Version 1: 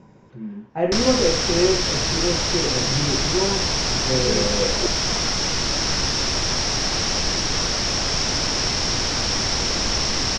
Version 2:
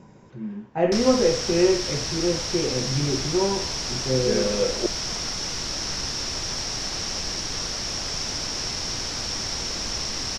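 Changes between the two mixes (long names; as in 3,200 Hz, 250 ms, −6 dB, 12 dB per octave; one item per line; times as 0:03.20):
background −9.0 dB
master: remove high-frequency loss of the air 62 metres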